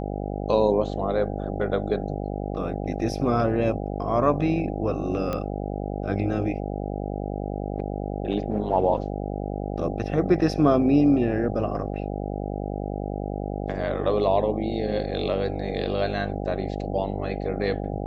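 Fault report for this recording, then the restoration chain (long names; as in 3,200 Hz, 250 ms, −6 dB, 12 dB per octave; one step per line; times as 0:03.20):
mains buzz 50 Hz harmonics 16 −30 dBFS
0:05.33: click −15 dBFS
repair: click removal
hum removal 50 Hz, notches 16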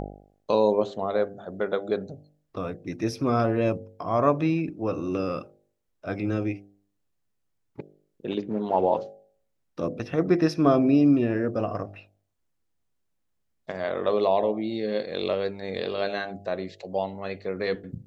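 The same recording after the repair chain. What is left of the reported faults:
none of them is left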